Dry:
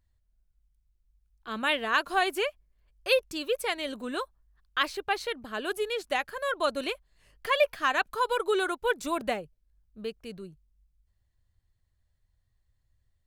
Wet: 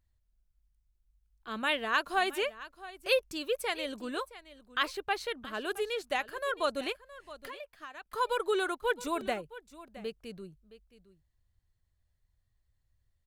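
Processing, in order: 6.92–8.12 compressor 6:1, threshold -41 dBFS, peak gain reduction 21 dB; on a send: echo 0.668 s -17 dB; on the sum: gain -3 dB

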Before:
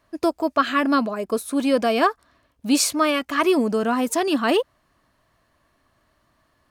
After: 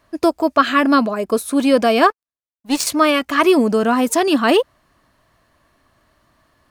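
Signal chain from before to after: 2.1–2.87 power-law curve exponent 2; gain +5.5 dB

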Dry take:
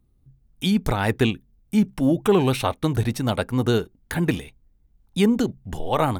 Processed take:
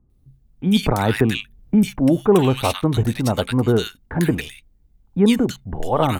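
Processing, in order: bands offset in time lows, highs 0.1 s, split 1500 Hz; 0.83–1.99 three-band squash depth 70%; gain +3.5 dB

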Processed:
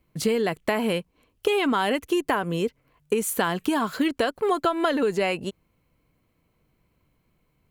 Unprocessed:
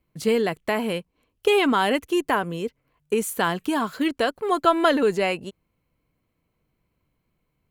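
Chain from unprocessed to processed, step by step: compressor 6:1, threshold -25 dBFS, peak gain reduction 12.5 dB; gain +5 dB

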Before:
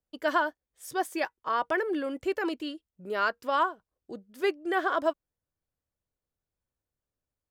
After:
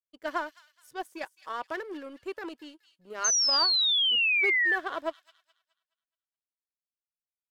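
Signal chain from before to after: power-law curve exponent 1.4; thin delay 0.211 s, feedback 36%, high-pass 3400 Hz, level -9 dB; painted sound fall, 3.24–4.76, 1700–6400 Hz -21 dBFS; gain -3.5 dB

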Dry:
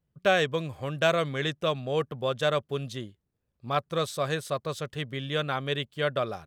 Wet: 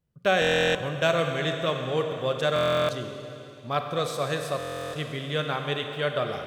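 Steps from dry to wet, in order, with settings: Schroeder reverb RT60 3.1 s, combs from 32 ms, DRR 4 dB; stuck buffer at 0.4/2.54/4.58, samples 1024, times 14

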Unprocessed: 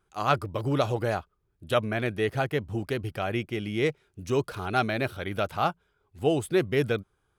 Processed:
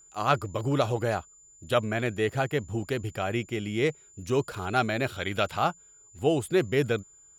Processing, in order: 5.06–5.59 bell 3400 Hz +6.5 dB 2.1 oct; whine 7100 Hz -53 dBFS

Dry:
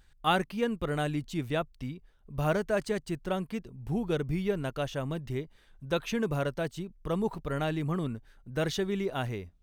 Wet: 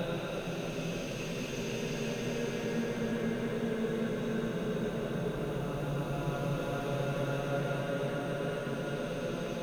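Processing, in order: swelling echo 0.148 s, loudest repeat 5, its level -7.5 dB; added noise white -64 dBFS; Paulstretch 18×, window 0.25 s, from 6; gain -6 dB

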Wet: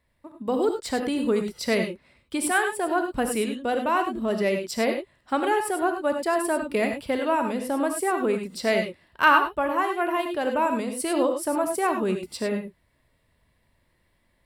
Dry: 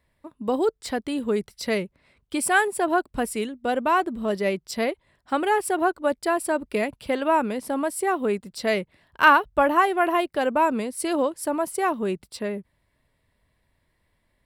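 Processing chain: vocal rider within 4 dB 0.5 s; non-linear reverb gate 0.12 s rising, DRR 5 dB; gain -2.5 dB

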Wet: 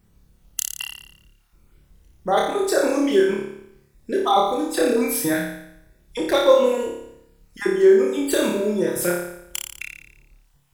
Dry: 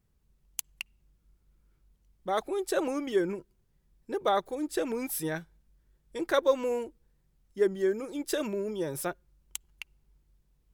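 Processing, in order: random spectral dropouts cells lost 25%; in parallel at -1 dB: compressor, threshold -42 dBFS, peak gain reduction 21.5 dB; on the sum: flutter echo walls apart 4.9 m, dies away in 0.77 s; gain +6.5 dB

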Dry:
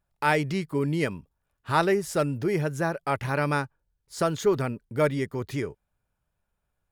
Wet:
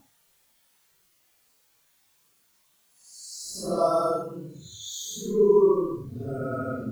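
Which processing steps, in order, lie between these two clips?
spectral noise reduction 27 dB; added noise white -66 dBFS; Paulstretch 6.7×, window 0.05 s, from 3.66

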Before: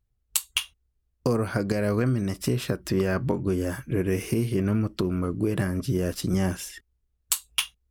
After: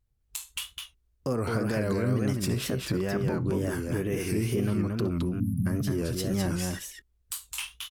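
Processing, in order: spectral delete 5.18–5.66, 280–10000 Hz; limiter -20.5 dBFS, peak gain reduction 13 dB; on a send: tapped delay 69/216 ms -17/-3.5 dB; on the sum: wow and flutter 110 cents

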